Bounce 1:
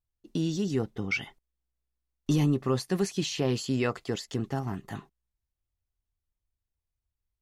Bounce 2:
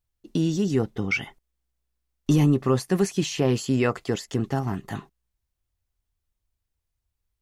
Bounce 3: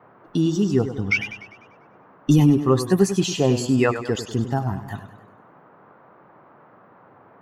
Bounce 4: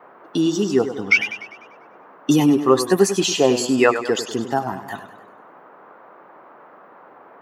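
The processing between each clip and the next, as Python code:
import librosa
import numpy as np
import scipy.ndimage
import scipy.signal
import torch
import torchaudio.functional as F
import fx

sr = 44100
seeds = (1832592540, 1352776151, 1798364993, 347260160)

y1 = fx.dynamic_eq(x, sr, hz=4100.0, q=1.6, threshold_db=-49.0, ratio=4.0, max_db=-6)
y1 = y1 * librosa.db_to_amplitude(5.5)
y2 = fx.bin_expand(y1, sr, power=1.5)
y2 = fx.dmg_noise_band(y2, sr, seeds[0], low_hz=110.0, high_hz=1300.0, level_db=-57.0)
y2 = fx.echo_warbled(y2, sr, ms=99, feedback_pct=51, rate_hz=2.8, cents=87, wet_db=-11.0)
y2 = y2 * librosa.db_to_amplitude(5.5)
y3 = scipy.signal.sosfilt(scipy.signal.butter(2, 330.0, 'highpass', fs=sr, output='sos'), y2)
y3 = y3 * librosa.db_to_amplitude(6.0)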